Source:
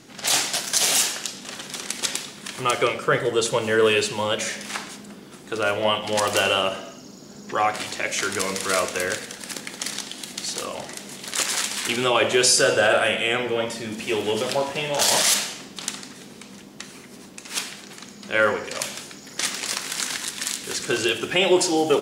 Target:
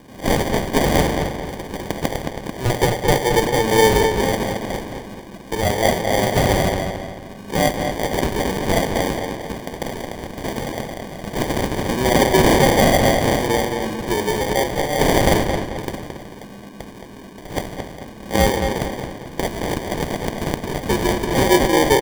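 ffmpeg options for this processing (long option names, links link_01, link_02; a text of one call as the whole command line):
ffmpeg -i in.wav -filter_complex "[0:a]acrusher=samples=33:mix=1:aa=0.000001,asplit=2[link_01][link_02];[link_02]adelay=220,lowpass=frequency=4500:poles=1,volume=-5.5dB,asplit=2[link_03][link_04];[link_04]adelay=220,lowpass=frequency=4500:poles=1,volume=0.41,asplit=2[link_05][link_06];[link_06]adelay=220,lowpass=frequency=4500:poles=1,volume=0.41,asplit=2[link_07][link_08];[link_08]adelay=220,lowpass=frequency=4500:poles=1,volume=0.41,asplit=2[link_09][link_10];[link_10]adelay=220,lowpass=frequency=4500:poles=1,volume=0.41[link_11];[link_01][link_03][link_05][link_07][link_09][link_11]amix=inputs=6:normalize=0,volume=3.5dB" out.wav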